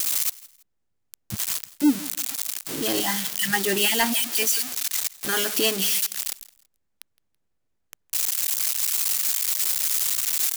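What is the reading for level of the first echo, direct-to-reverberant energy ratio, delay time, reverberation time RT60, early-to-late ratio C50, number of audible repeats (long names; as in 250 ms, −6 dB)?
−21.0 dB, no reverb audible, 165 ms, no reverb audible, no reverb audible, 2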